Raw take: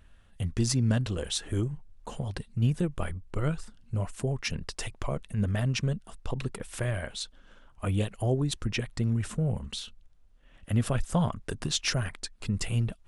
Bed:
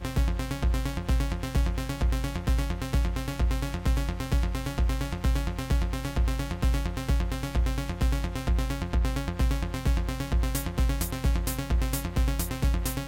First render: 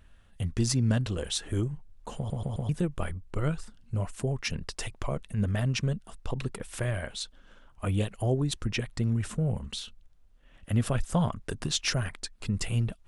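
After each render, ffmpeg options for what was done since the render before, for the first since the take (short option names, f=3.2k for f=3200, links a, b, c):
-filter_complex "[0:a]asplit=5[a][b][c][d][e];[a]atrim=end=2.302[f];[b]atrim=start=2.168:end=2.302[g];[c]atrim=start=2.168:end=2.302[h];[d]atrim=start=2.168:end=2.302[i];[e]atrim=start=2.688[j];[f][g]acrossfade=d=0.004:c1=hsin:c2=hsin[k];[k][h]acrossfade=d=0.004:c1=hsin:c2=hsin[l];[l][i]acrossfade=d=0.004:c1=hsin:c2=hsin[m];[m][j]acrossfade=d=0.004:c1=hsin:c2=hsin"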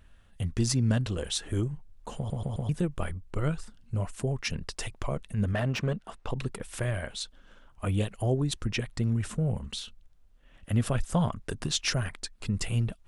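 -filter_complex "[0:a]asettb=1/sr,asplit=3[a][b][c];[a]atrim=end=5.534[d];[b]atrim=start=5.53:end=6.29,asetpts=PTS-STARTPTS,afade=t=in:d=0.004:c=qsin,afade=t=out:st=0.756:d=0.004:c=qsin,asplit=2[e][f];[f]highpass=f=720:p=1,volume=17dB,asoftclip=type=tanh:threshold=-17dB[g];[e][g]amix=inputs=2:normalize=0,lowpass=f=1.3k:p=1,volume=-6dB[h];[c]atrim=start=6.286[i];[d][h]acrossfade=d=0.004:c1=hsin:c2=qsin[j];[j][i]acrossfade=d=0.004:c1=qsin:c2=hsin"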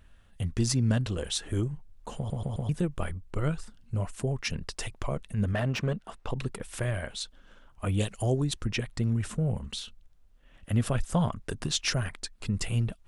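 -filter_complex "[0:a]asettb=1/sr,asplit=3[a][b][c];[a]atrim=end=7.994[d];[b]atrim=start=7.99:end=8.45,asetpts=PTS-STARTPTS,afade=t=in:d=0.004:c=qsin,afade=t=out:st=0.456:d=0.004:c=qsin,equalizer=f=6.4k:w=0.83:g=10.5[e];[c]atrim=start=8.446[f];[d][e]acrossfade=d=0.004:c1=hsin:c2=qsin[g];[g][f]acrossfade=d=0.004:c1=qsin:c2=hsin"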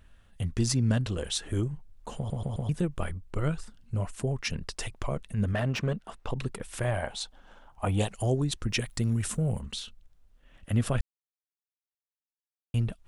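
-filter_complex "[0:a]asettb=1/sr,asplit=3[a][b][c];[a]atrim=end=6.844[d];[b]atrim=start=6.84:end=8.12,asetpts=PTS-STARTPTS,afade=t=in:d=0.004:c=qsin,afade=t=out:st=1.276:d=0.004:c=qsin,equalizer=f=810:w=2.2:g=13[e];[c]atrim=start=8.116[f];[d][e]acrossfade=d=0.004:c1=hsin:c2=qsin[g];[g][f]acrossfade=d=0.004:c1=qsin:c2=hsin,asettb=1/sr,asplit=3[h][i][j];[h]atrim=end=8.684[k];[i]atrim=start=8.68:end=9.61,asetpts=PTS-STARTPTS,afade=t=in:d=0.004:c=qsin,afade=t=out:st=0.926:d=0.004:c=qsin,aemphasis=mode=production:type=50kf[l];[j]atrim=start=9.606[m];[k][l]acrossfade=d=0.004:c1=hsin:c2=qsin[n];[n][m]acrossfade=d=0.004:c1=qsin:c2=hsin,asplit=3[o][p][q];[o]atrim=end=11.01,asetpts=PTS-STARTPTS,afade=t=out:st=11.006:d=0.004:c=hsin[r];[p]atrim=start=11.01:end=12.74,asetpts=PTS-STARTPTS,volume=0[s];[q]atrim=start=12.74,asetpts=PTS-STARTPTS,afade=t=in:d=0.004:c=hsin[t];[r][s][t]concat=n=3:v=0:a=1"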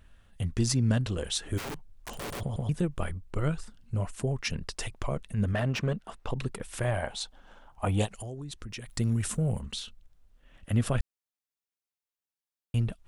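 -filter_complex "[0:a]asplit=3[a][b][c];[a]afade=t=out:st=1.57:d=0.02[d];[b]aeval=exprs='(mod(42.2*val(0)+1,2)-1)/42.2':c=same,afade=t=in:st=1.57:d=0.02,afade=t=out:st=2.39:d=0.02[e];[c]afade=t=in:st=2.39:d=0.02[f];[d][e][f]amix=inputs=3:normalize=0,asplit=3[g][h][i];[g]afade=t=out:st=8.05:d=0.02[j];[h]acompressor=threshold=-38dB:ratio=4:attack=3.2:release=140:knee=1:detection=peak,afade=t=in:st=8.05:d=0.02,afade=t=out:st=8.88:d=0.02[k];[i]afade=t=in:st=8.88:d=0.02[l];[j][k][l]amix=inputs=3:normalize=0"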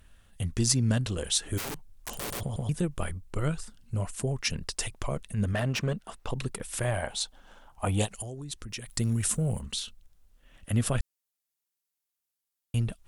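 -af "aemphasis=mode=production:type=cd"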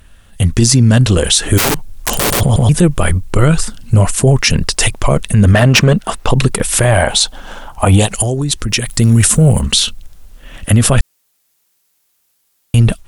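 -af "dynaudnorm=f=270:g=3:m=11dB,alimiter=level_in=13dB:limit=-1dB:release=50:level=0:latency=1"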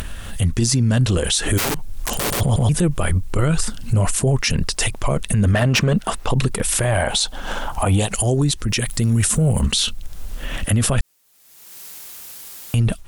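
-af "acompressor=mode=upward:threshold=-16dB:ratio=2.5,alimiter=limit=-9.5dB:level=0:latency=1:release=91"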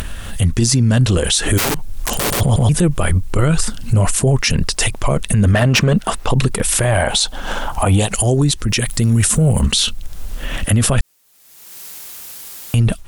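-af "volume=3.5dB"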